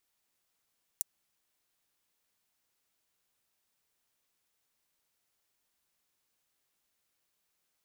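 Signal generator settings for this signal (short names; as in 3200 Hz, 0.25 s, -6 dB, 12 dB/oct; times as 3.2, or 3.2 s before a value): closed hi-hat, high-pass 7500 Hz, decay 0.02 s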